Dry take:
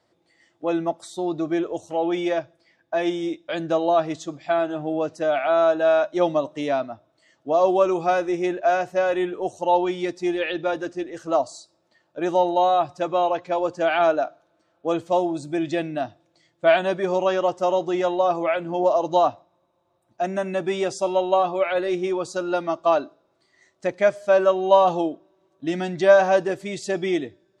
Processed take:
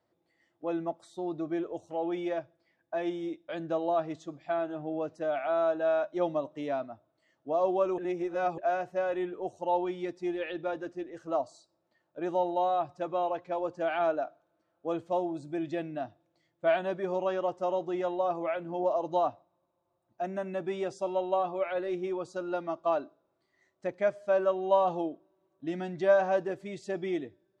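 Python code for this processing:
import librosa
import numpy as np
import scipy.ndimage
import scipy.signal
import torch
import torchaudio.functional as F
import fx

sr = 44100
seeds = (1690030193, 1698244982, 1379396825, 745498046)

y = fx.edit(x, sr, fx.reverse_span(start_s=7.98, length_s=0.6), tone=tone)
y = fx.high_shelf(y, sr, hz=3000.0, db=-10.0)
y = F.gain(torch.from_numpy(y), -8.5).numpy()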